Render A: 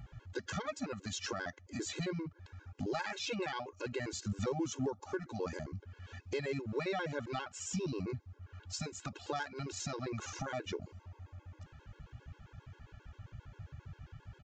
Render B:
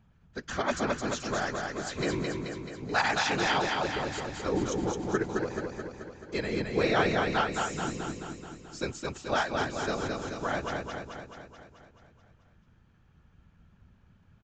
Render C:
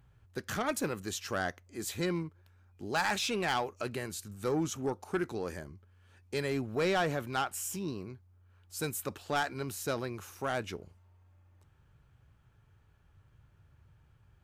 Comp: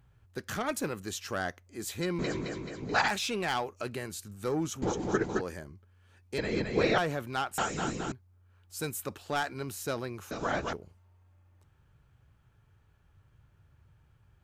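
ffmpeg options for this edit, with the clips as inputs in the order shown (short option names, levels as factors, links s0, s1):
-filter_complex "[1:a]asplit=5[s0][s1][s2][s3][s4];[2:a]asplit=6[s5][s6][s7][s8][s9][s10];[s5]atrim=end=2.192[s11];[s0]atrim=start=2.188:end=3.082[s12];[s6]atrim=start=3.078:end=4.822[s13];[s1]atrim=start=4.818:end=5.412[s14];[s7]atrim=start=5.408:end=6.382[s15];[s2]atrim=start=6.378:end=6.982[s16];[s8]atrim=start=6.978:end=7.582[s17];[s3]atrim=start=7.578:end=8.122[s18];[s9]atrim=start=8.118:end=10.312[s19];[s4]atrim=start=10.308:end=10.732[s20];[s10]atrim=start=10.728[s21];[s11][s12]acrossfade=d=0.004:c1=hsin:c2=hsin[s22];[s22][s13]acrossfade=d=0.004:c1=hsin:c2=hsin[s23];[s23][s14]acrossfade=d=0.004:c1=hsin:c2=hsin[s24];[s24][s15]acrossfade=d=0.004:c1=hsin:c2=hsin[s25];[s25][s16]acrossfade=d=0.004:c1=hsin:c2=hsin[s26];[s26][s17]acrossfade=d=0.004:c1=hsin:c2=hsin[s27];[s27][s18]acrossfade=d=0.004:c1=hsin:c2=hsin[s28];[s28][s19]acrossfade=d=0.004:c1=hsin:c2=hsin[s29];[s29][s20]acrossfade=d=0.004:c1=hsin:c2=hsin[s30];[s30][s21]acrossfade=d=0.004:c1=hsin:c2=hsin"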